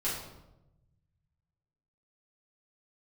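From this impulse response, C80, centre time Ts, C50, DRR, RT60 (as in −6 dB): 5.5 dB, 53 ms, 2.5 dB, −9.5 dB, 0.95 s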